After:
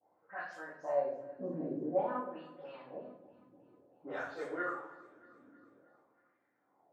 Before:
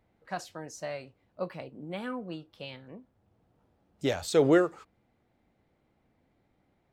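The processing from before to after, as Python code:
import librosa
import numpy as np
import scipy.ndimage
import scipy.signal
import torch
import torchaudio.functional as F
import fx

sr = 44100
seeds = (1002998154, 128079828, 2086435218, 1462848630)

p1 = fx.spec_delay(x, sr, highs='late', ms=130)
p2 = scipy.signal.sosfilt(scipy.signal.butter(2, 150.0, 'highpass', fs=sr, output='sos'), p1)
p3 = fx.peak_eq(p2, sr, hz=3400.0, db=-14.0, octaves=2.7)
p4 = fx.over_compress(p3, sr, threshold_db=-38.0, ratio=-1.0)
p5 = p3 + F.gain(torch.from_numpy(p4), 0.5).numpy()
p6 = fx.wah_lfo(p5, sr, hz=0.51, low_hz=260.0, high_hz=1800.0, q=4.1)
p7 = fx.echo_feedback(p6, sr, ms=316, feedback_pct=59, wet_db=-20)
p8 = fx.room_shoebox(p7, sr, seeds[0], volume_m3=120.0, walls='mixed', distance_m=2.1)
y = F.gain(torch.from_numpy(p8), -2.5).numpy()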